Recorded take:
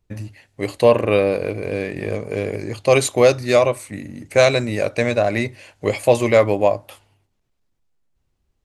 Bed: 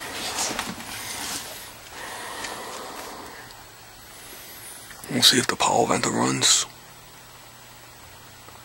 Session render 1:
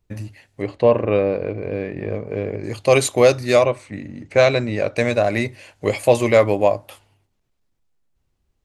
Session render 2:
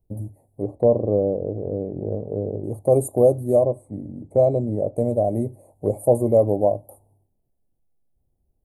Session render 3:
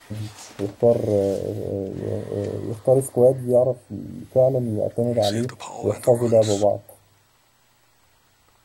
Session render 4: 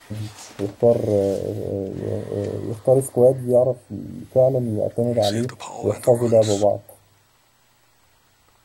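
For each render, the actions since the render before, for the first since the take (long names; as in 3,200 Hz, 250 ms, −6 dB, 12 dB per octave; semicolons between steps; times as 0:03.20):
0:00.62–0:02.64: head-to-tape spacing loss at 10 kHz 27 dB; 0:03.64–0:04.96: high-frequency loss of the air 110 metres
elliptic band-stop filter 740–9,800 Hz, stop band 40 dB; dynamic equaliser 960 Hz, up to −4 dB, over −30 dBFS, Q 0.91
mix in bed −15 dB
level +1 dB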